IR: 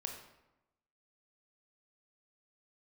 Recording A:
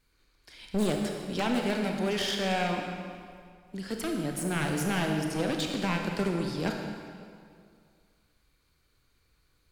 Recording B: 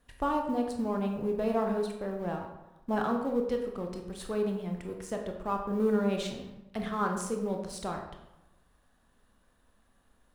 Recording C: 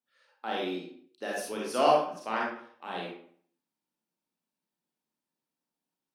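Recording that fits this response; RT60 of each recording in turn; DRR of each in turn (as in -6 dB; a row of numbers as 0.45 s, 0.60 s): B; 2.2 s, 0.95 s, 0.60 s; 2.0 dB, 2.5 dB, -4.5 dB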